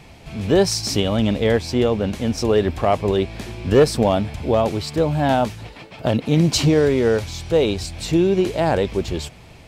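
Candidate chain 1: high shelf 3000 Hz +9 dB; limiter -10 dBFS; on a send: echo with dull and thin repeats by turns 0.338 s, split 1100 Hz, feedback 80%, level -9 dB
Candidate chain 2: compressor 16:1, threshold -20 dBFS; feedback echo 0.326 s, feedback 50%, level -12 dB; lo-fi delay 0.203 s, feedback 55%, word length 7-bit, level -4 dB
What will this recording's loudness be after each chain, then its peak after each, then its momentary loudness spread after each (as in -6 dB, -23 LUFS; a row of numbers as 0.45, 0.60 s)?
-20.0, -24.0 LUFS; -7.0, -7.5 dBFS; 7, 4 LU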